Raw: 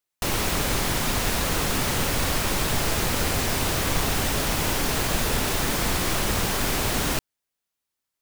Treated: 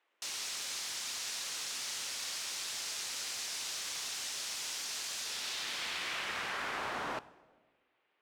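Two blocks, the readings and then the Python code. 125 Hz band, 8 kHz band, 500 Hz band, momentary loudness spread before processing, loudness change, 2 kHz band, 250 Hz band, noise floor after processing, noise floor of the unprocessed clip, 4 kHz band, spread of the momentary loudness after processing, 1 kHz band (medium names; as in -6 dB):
-34.0 dB, -10.0 dB, -20.5 dB, 0 LU, -12.5 dB, -12.0 dB, -26.5 dB, -78 dBFS, -84 dBFS, -9.0 dB, 1 LU, -15.0 dB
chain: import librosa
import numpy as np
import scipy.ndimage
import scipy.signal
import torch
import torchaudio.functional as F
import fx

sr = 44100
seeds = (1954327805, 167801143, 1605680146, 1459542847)

y = fx.high_shelf(x, sr, hz=9300.0, db=-6.5)
y = fx.rev_plate(y, sr, seeds[0], rt60_s=1.4, hf_ratio=0.75, predelay_ms=0, drr_db=16.5)
y = fx.filter_sweep_bandpass(y, sr, from_hz=5900.0, to_hz=540.0, start_s=5.18, end_s=7.78, q=1.1)
y = fx.dmg_noise_band(y, sr, seeds[1], low_hz=300.0, high_hz=2900.0, level_db=-74.0)
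y = y * librosa.db_to_amplitude(-5.0)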